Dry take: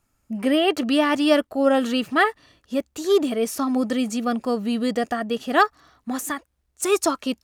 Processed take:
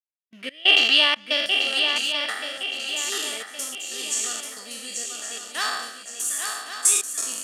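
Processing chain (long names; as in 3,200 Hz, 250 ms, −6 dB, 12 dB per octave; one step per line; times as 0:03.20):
peak hold with a decay on every bin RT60 1.18 s
downward expander −29 dBFS
leveller curve on the samples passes 1
rotating-speaker cabinet horn 0.85 Hz
gate pattern "x.x.xxx.xx" 92 BPM −24 dB
resonant band-pass 3,300 Hz, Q 1.9, from 0:01.46 8,000 Hz
feedback echo with a long and a short gap by turns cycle 1,116 ms, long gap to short 3 to 1, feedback 42%, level −6 dB
level +7 dB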